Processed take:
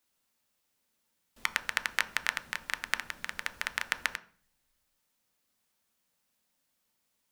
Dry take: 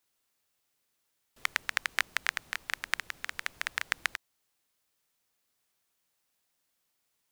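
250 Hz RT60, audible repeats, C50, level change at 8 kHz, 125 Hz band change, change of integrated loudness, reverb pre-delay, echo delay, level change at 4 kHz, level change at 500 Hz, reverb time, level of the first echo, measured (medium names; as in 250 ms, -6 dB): 0.70 s, no echo, 15.5 dB, 0.0 dB, no reading, 0.0 dB, 3 ms, no echo, 0.0 dB, +1.5 dB, 0.40 s, no echo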